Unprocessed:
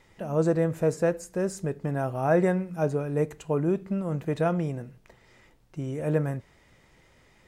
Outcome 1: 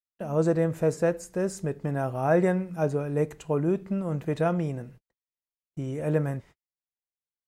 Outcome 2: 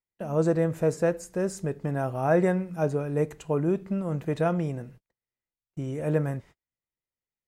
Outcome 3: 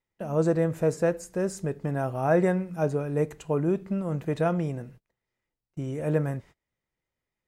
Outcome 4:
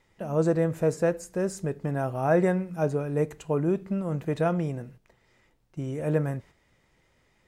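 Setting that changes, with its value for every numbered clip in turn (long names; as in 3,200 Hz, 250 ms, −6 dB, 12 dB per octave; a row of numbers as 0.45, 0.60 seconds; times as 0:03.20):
noise gate, range: −53, −40, −28, −7 decibels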